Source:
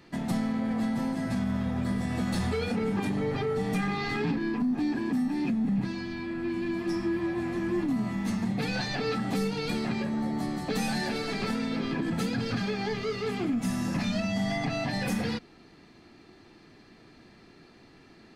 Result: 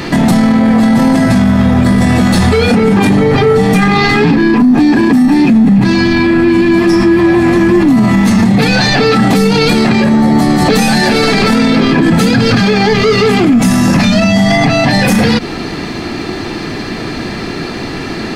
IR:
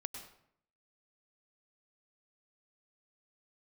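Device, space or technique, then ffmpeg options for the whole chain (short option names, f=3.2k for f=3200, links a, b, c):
loud club master: -af "acompressor=threshold=-32dB:ratio=2.5,asoftclip=type=hard:threshold=-25.5dB,alimiter=level_in=35.5dB:limit=-1dB:release=50:level=0:latency=1,volume=-1dB"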